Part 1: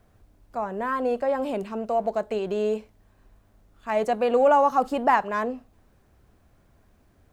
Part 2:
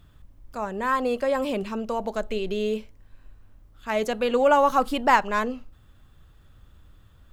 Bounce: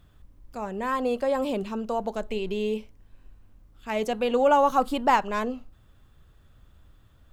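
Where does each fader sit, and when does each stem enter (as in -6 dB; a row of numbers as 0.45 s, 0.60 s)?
-9.5 dB, -3.0 dB; 0.00 s, 0.00 s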